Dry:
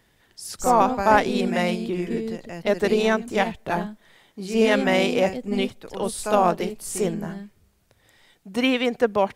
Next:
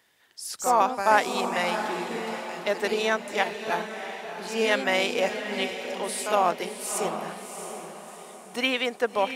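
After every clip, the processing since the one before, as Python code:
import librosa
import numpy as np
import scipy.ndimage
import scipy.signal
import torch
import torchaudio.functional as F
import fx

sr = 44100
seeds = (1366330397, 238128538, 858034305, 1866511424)

y = fx.highpass(x, sr, hz=790.0, slope=6)
y = fx.echo_diffused(y, sr, ms=683, feedback_pct=44, wet_db=-8.5)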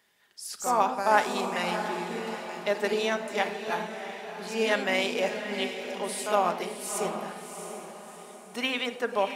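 y = fx.room_shoebox(x, sr, seeds[0], volume_m3=3100.0, walls='furnished', distance_m=1.3)
y = F.gain(torch.from_numpy(y), -3.5).numpy()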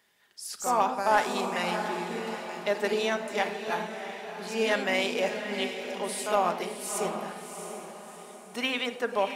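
y = 10.0 ** (-11.0 / 20.0) * np.tanh(x / 10.0 ** (-11.0 / 20.0))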